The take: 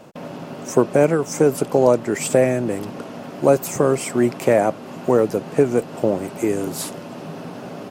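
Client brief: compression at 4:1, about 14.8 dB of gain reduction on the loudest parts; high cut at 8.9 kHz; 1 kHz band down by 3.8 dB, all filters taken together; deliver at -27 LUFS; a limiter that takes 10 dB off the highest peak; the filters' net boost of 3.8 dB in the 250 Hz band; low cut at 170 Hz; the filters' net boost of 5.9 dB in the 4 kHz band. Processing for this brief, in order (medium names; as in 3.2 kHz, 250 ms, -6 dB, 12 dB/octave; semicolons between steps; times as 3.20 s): high-pass 170 Hz; low-pass 8.9 kHz; peaking EQ 250 Hz +6 dB; peaking EQ 1 kHz -6.5 dB; peaking EQ 4 kHz +8.5 dB; compression 4:1, threshold -27 dBFS; trim +5.5 dB; peak limiter -16.5 dBFS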